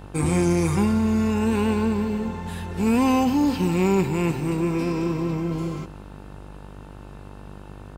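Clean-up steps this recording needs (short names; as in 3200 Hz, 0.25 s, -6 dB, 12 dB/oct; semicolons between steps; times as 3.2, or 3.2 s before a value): de-hum 49.5 Hz, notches 31; inverse comb 0.182 s -19 dB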